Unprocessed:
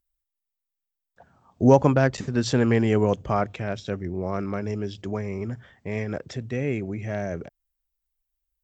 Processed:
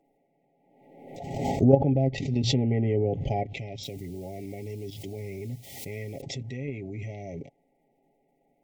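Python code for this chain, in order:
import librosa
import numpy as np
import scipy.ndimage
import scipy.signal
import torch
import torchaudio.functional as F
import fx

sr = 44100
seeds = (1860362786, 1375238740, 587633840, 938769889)

y = fx.env_lowpass_down(x, sr, base_hz=1400.0, full_db=-16.5)
y = fx.level_steps(y, sr, step_db=12)
y = fx.quant_dither(y, sr, seeds[0], bits=10, dither='triangular', at=(3.83, 6.21))
y = fx.dmg_noise_band(y, sr, seeds[1], low_hz=160.0, high_hz=1300.0, level_db=-67.0)
y = fx.brickwall_bandstop(y, sr, low_hz=870.0, high_hz=1900.0)
y = fx.peak_eq(y, sr, hz=680.0, db=-3.5, octaves=1.9)
y = y + 0.53 * np.pad(y, (int(7.3 * sr / 1000.0), 0))[:len(y)]
y = fx.pre_swell(y, sr, db_per_s=48.0)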